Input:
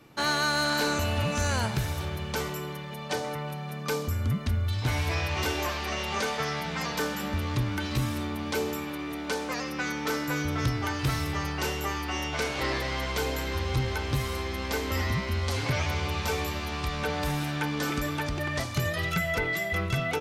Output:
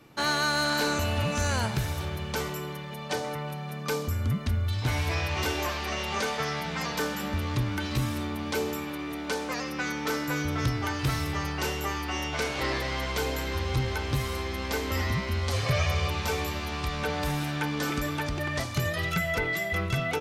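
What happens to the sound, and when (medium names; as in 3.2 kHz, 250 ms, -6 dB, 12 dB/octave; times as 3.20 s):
15.53–16.10 s: comb 1.7 ms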